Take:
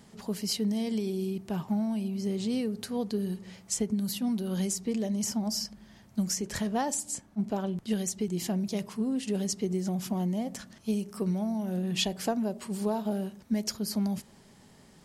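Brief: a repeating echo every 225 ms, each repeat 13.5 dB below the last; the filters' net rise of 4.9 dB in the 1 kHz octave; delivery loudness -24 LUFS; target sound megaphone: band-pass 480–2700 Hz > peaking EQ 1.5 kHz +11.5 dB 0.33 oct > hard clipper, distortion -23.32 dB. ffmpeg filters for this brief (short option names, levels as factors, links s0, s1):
-af "highpass=480,lowpass=2700,equalizer=f=1000:t=o:g=6.5,equalizer=f=1500:t=o:w=0.33:g=11.5,aecho=1:1:225|450:0.211|0.0444,asoftclip=type=hard:threshold=0.1,volume=4.73"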